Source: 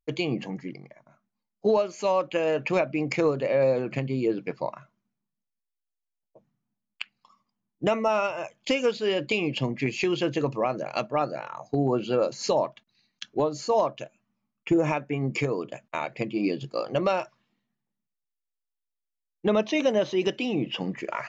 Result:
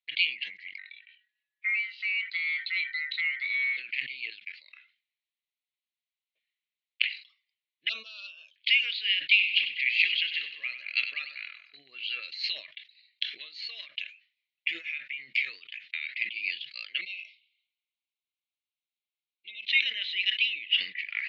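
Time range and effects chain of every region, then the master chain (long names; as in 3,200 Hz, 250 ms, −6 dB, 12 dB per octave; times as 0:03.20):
0:00.78–0:03.77: ring modulation 1,700 Hz + downward compressor 1.5 to 1, threshold −47 dBFS
0:04.30–0:04.73: high-shelf EQ 3,200 Hz +7.5 dB + output level in coarse steps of 19 dB
0:07.89–0:08.56: parametric band 110 Hz −9.5 dB 2.2 octaves + hard clipping −18.5 dBFS + Butterworth band-reject 2,000 Hz, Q 0.74
0:09.29–0:11.77: high-pass filter 54 Hz + repeating echo 97 ms, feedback 51%, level −10 dB + one half of a high-frequency compander decoder only
0:13.81–0:16.19: high-shelf EQ 5,900 Hz +8.5 dB + downward compressor 10 to 1, threshold −28 dBFS
0:17.01–0:19.68: Chebyshev band-stop filter 1,000–2,100 Hz, order 5 + downward compressor 1.5 to 1, threshold −48 dBFS
whole clip: elliptic band-pass filter 2,000–4,100 Hz, stop band 50 dB; level that may fall only so fast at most 150 dB per second; level +9 dB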